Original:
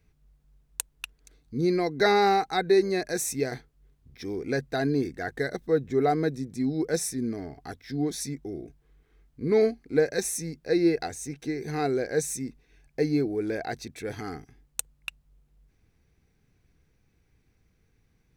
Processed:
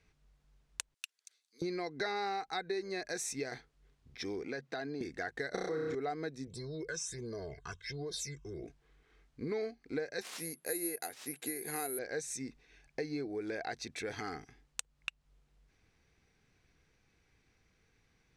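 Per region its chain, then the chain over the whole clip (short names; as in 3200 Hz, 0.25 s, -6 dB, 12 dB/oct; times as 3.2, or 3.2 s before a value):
0.94–1.62 HPF 290 Hz + differentiator
4.44–5.01 HPF 130 Hz 24 dB/oct + bell 11000 Hz -9 dB 1.1 oct + compressor 2:1, threshold -36 dBFS
5.54–5.95 flutter echo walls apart 5.5 m, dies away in 1.1 s + fast leveller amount 70%
6.47–8.64 phaser stages 8, 1.4 Hz, lowest notch 550–2600 Hz + comb 1.9 ms, depth 93% + compressor 3:1, threshold -35 dBFS
10.21–11.99 median filter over 5 samples + HPF 200 Hz + careless resampling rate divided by 4×, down filtered, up zero stuff
whole clip: LPF 7100 Hz 12 dB/oct; low shelf 430 Hz -11 dB; compressor 4:1, threshold -40 dBFS; gain +3.5 dB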